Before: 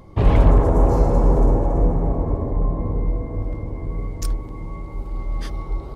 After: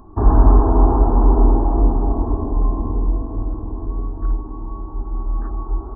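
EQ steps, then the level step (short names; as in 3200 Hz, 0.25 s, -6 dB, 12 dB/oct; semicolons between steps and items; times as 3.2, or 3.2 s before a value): brick-wall FIR low-pass 2000 Hz; fixed phaser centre 530 Hz, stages 6; +4.5 dB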